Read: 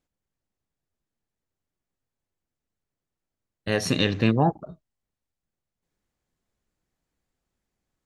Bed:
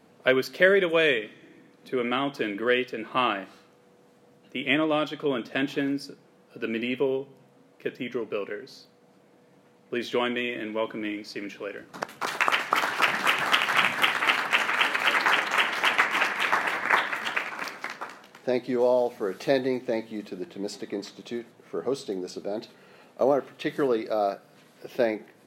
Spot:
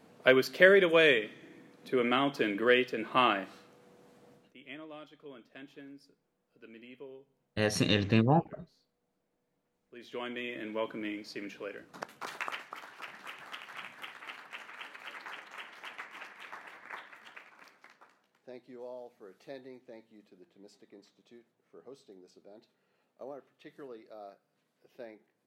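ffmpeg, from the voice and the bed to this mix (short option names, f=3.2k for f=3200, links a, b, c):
-filter_complex "[0:a]adelay=3900,volume=-4.5dB[a];[1:a]volume=15dB,afade=t=out:st=4.32:d=0.22:silence=0.0891251,afade=t=in:st=9.94:d=0.79:silence=0.149624,afade=t=out:st=11.66:d=1.11:silence=0.149624[b];[a][b]amix=inputs=2:normalize=0"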